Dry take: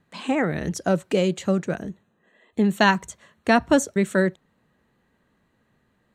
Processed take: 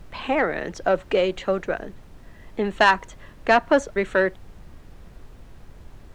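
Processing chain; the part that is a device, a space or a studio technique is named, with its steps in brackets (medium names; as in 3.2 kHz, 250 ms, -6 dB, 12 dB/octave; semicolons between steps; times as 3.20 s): aircraft cabin announcement (band-pass 440–3000 Hz; saturation -12 dBFS, distortion -17 dB; brown noise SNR 17 dB); trim +5 dB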